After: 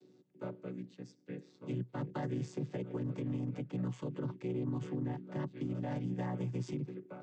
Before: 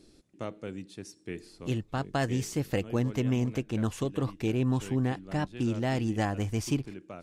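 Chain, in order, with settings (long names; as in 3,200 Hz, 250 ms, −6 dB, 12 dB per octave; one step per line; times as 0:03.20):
channel vocoder with a chord as carrier minor triad, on B2
high-pass filter 240 Hz 6 dB per octave
brickwall limiter −30.5 dBFS, peak gain reduction 10 dB
level +1.5 dB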